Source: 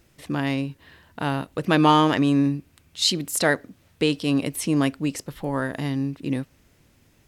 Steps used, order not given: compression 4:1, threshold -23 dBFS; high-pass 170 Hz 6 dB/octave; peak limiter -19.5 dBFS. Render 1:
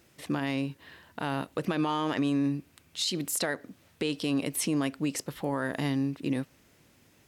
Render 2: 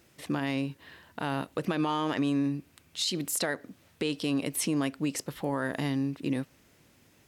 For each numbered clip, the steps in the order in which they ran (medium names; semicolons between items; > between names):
high-pass > compression > peak limiter; compression > high-pass > peak limiter